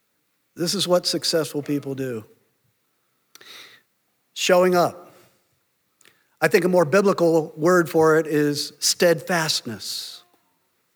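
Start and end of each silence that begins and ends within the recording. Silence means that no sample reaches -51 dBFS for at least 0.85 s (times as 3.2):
2.34–3.35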